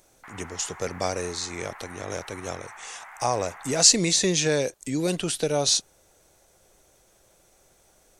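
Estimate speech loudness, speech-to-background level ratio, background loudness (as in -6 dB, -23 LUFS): -24.0 LUFS, 20.0 dB, -44.0 LUFS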